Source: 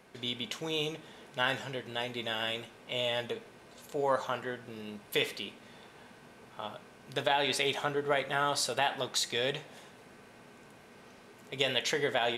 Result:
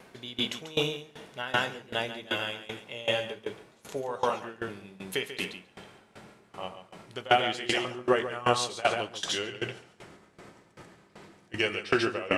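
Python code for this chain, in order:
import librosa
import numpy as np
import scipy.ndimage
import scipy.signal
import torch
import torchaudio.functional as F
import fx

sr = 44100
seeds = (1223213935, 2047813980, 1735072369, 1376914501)

y = fx.pitch_glide(x, sr, semitones=-4.0, runs='starting unshifted')
y = fx.echo_feedback(y, sr, ms=140, feedback_pct=18, wet_db=-4.0)
y = fx.tremolo_decay(y, sr, direction='decaying', hz=2.6, depth_db=20)
y = y * 10.0 ** (8.5 / 20.0)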